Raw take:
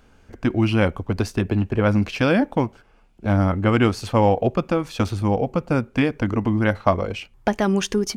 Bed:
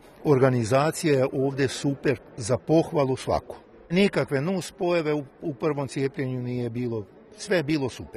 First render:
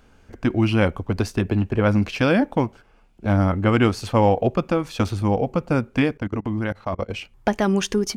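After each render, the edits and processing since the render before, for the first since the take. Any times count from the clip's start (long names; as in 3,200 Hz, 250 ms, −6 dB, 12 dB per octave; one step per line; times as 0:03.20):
0:06.13–0:07.09: output level in coarse steps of 24 dB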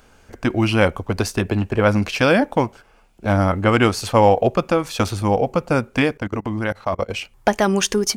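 drawn EQ curve 280 Hz 0 dB, 560 Hz +5 dB, 3,100 Hz +5 dB, 8,900 Hz +10 dB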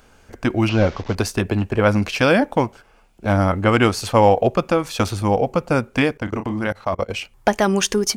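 0:00.69–0:01.15: linear delta modulator 32 kbit/s, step −31.5 dBFS
0:06.24–0:06.67: double-tracking delay 32 ms −8 dB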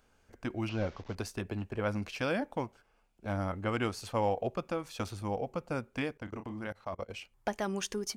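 level −16.5 dB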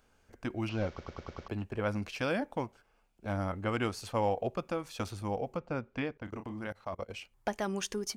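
0:00.88: stutter in place 0.10 s, 6 plays
0:05.57–0:06.24: high-frequency loss of the air 140 metres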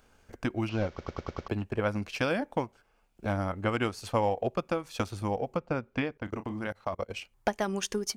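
transient designer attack +4 dB, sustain −4 dB
in parallel at −1.5 dB: downward compressor, threshold −38 dBFS, peak gain reduction 14 dB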